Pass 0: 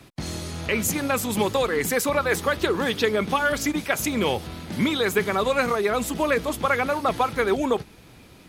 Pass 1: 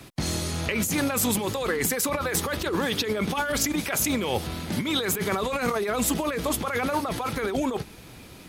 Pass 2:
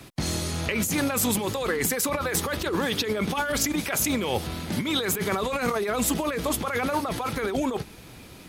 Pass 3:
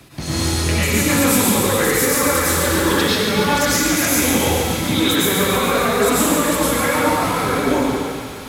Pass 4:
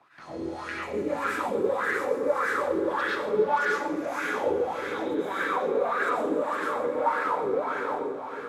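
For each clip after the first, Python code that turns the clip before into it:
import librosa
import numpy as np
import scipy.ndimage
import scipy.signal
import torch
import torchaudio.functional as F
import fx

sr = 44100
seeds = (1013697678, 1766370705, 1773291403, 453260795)

y1 = fx.high_shelf(x, sr, hz=5700.0, db=4.5)
y1 = fx.over_compress(y1, sr, threshold_db=-26.0, ratio=-1.0)
y2 = y1
y3 = fx.quant_companded(y2, sr, bits=8)
y3 = fx.echo_wet_highpass(y3, sr, ms=142, feedback_pct=76, hz=1500.0, wet_db=-7.0)
y3 = fx.rev_plate(y3, sr, seeds[0], rt60_s=1.7, hf_ratio=0.8, predelay_ms=85, drr_db=-8.5)
y4 = fx.wah_lfo(y3, sr, hz=1.7, low_hz=400.0, high_hz=1600.0, q=4.7)
y4 = fx.echo_alternate(y4, sr, ms=316, hz=1000.0, feedback_pct=78, wet_db=-9.5)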